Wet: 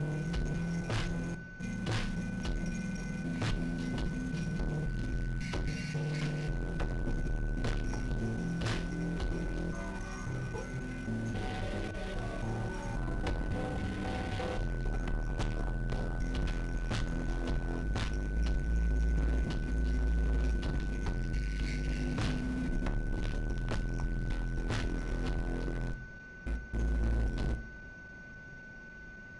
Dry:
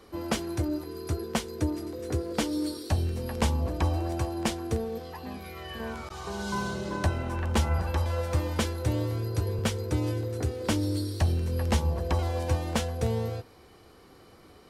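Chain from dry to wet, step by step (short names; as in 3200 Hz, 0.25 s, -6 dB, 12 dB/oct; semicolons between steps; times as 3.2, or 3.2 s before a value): slices in reverse order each 0.135 s, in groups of 6; HPF 54 Hz 6 dB/oct; low shelf 190 Hz +11 dB; in parallel at -11 dB: requantised 6-bit, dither none; on the sum: soft clip -29.5 dBFS, distortion -4 dB; speed mistake 15 ips tape played at 7.5 ips; on a send at -11 dB: reverb RT60 0.45 s, pre-delay 3 ms; on the sum: whine 1500 Hz -47 dBFS; gain -1 dB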